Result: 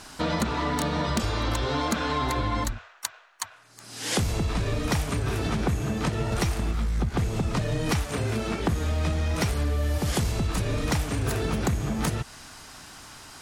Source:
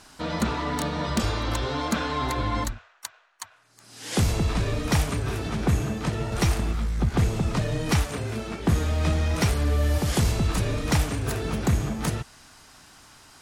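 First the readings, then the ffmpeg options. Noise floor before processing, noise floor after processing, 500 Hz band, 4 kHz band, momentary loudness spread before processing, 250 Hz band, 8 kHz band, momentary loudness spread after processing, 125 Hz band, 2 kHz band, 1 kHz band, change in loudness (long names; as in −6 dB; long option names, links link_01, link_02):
−56 dBFS, −50 dBFS, 0.0 dB, 0.0 dB, 8 LU, −1.0 dB, 0.0 dB, 11 LU, −2.0 dB, 0.0 dB, 0.0 dB, −1.5 dB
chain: -af "acompressor=threshold=-29dB:ratio=6,volume=6dB"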